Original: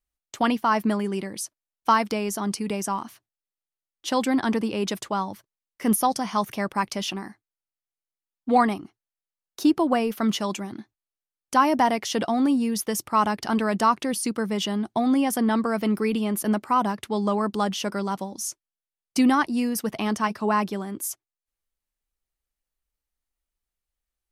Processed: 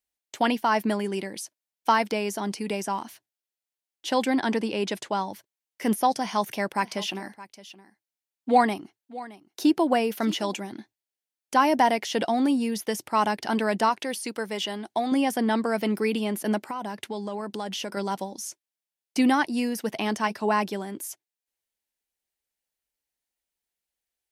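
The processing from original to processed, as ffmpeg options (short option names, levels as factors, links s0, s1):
-filter_complex "[0:a]asettb=1/sr,asplit=3[s0][s1][s2];[s0]atrim=end=4.304[s3];[s1]atrim=start=4.3:end=5.27,asetpts=PTS-STARTPTS,afade=t=in:d=0.004:c=qsin,afade=t=out:st=0.966:d=0.004:c=qsin,lowpass=9700[s4];[s2]atrim=start=5.266[s5];[s3][s4]acrossfade=d=0.004:c1=hsin:c2=qsin[s6];[s6][s5]acrossfade=d=0.004:c1=qsin:c2=hsin,asettb=1/sr,asplit=3[s7][s8][s9];[s7]atrim=end=6.194[s10];[s8]atrim=start=6.19:end=10.54,asetpts=PTS-STARTPTS,afade=t=in:d=0.004:c=qsin,afade=t=out:st=4.346:d=0.004:c=qsin,aecho=1:1:619:0.126,atrim=end_sample=191835[s11];[s9]atrim=start=10.536[s12];[s10][s11]acrossfade=d=0.004:c1=hsin:c2=qsin[s13];[s13][s12]acrossfade=d=0.004:c1=qsin:c2=hsin,asettb=1/sr,asplit=3[s14][s15][s16];[s14]atrim=end=13.894[s17];[s15]atrim=start=13.89:end=15.12,asetpts=PTS-STARTPTS,afade=t=in:d=0.004:c=qsin,afade=t=out:st=1.226:d=0.004:c=qsin,equalizer=f=140:w=0.52:g=-8.5[s18];[s16]atrim=start=15.116[s19];[s17][s18]acrossfade=d=0.004:c1=hsin:c2=qsin[s20];[s20][s19]acrossfade=d=0.004:c1=qsin:c2=hsin,asettb=1/sr,asplit=3[s21][s22][s23];[s21]atrim=end=16.594[s24];[s22]atrim=start=16.59:end=17.97,asetpts=PTS-STARTPTS,afade=t=in:d=0.004:c=qsin,afade=t=out:st=1.376:d=0.004:c=qsin,acompressor=threshold=0.0447:ratio=10:attack=3.2:release=140:knee=1:detection=peak[s25];[s23]atrim=start=17.966[s26];[s24][s25]acrossfade=d=0.004:c1=hsin:c2=qsin[s27];[s27][s26]acrossfade=d=0.004:c1=qsin:c2=hsin,acrossover=split=3100[s28][s29];[s29]acompressor=threshold=0.0178:ratio=4:attack=1:release=60[s30];[s28][s30]amix=inputs=2:normalize=0,highpass=f=350:p=1,equalizer=f=1200:w=4.2:g=-10,volume=1.33"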